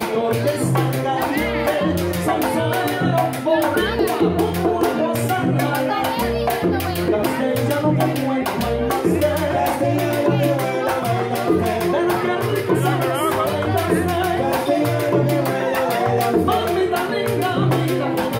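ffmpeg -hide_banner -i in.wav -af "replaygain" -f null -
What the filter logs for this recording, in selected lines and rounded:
track_gain = +1.5 dB
track_peak = 0.384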